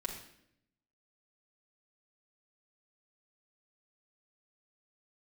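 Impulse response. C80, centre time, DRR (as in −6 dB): 9.5 dB, 25 ms, −0.5 dB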